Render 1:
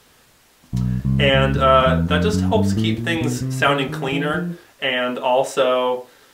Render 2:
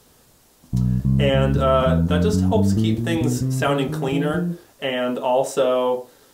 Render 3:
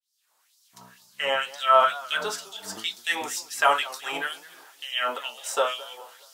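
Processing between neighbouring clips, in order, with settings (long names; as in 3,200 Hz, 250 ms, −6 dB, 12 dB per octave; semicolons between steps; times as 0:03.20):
parametric band 2,100 Hz −10 dB 2.1 octaves; in parallel at −2 dB: brickwall limiter −14 dBFS, peak gain reduction 8 dB; on the sum: level −3 dB
fade in at the beginning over 1.57 s; auto-filter high-pass sine 2.1 Hz 860–5,100 Hz; feedback echo with a swinging delay time 209 ms, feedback 40%, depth 144 cents, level −19.5 dB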